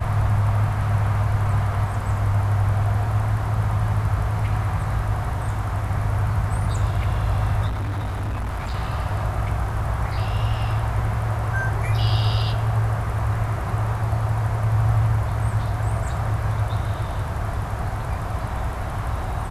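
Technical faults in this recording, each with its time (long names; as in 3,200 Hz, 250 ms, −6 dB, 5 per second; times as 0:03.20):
0:07.67–0:08.75: clipping −23 dBFS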